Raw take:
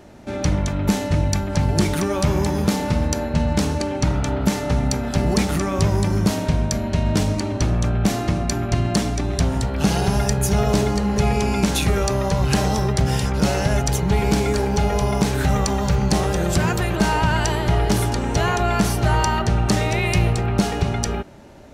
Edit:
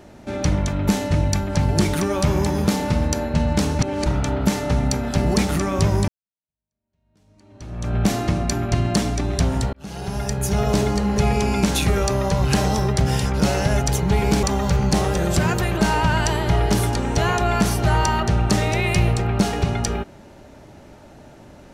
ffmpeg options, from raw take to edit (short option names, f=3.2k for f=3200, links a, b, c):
-filter_complex "[0:a]asplit=6[a][b][c][d][e][f];[a]atrim=end=3.792[g];[b]atrim=start=3.788:end=4.062,asetpts=PTS-STARTPTS,areverse[h];[c]atrim=start=4.058:end=6.08,asetpts=PTS-STARTPTS,afade=t=out:st=2.018:d=0.004:c=hsin[i];[d]atrim=start=6.08:end=9.73,asetpts=PTS-STARTPTS,afade=t=in:d=1.88:c=exp,afade=t=out:st=3.646:d=0.004:c=hsin[j];[e]atrim=start=9.73:end=14.432,asetpts=PTS-STARTPTS,afade=t=in:d=1.41:c=qsin[k];[f]atrim=start=15.618[l];[g][h]acrossfade=d=0.004:c1=hsin:c2=hsin[m];[i][j][k]concat=n=3:v=0:a=1[n];[m][n]acrossfade=d=0.004:c1=hsin:c2=hsin[o];[o][l]acrossfade=d=0.004:c1=hsin:c2=hsin"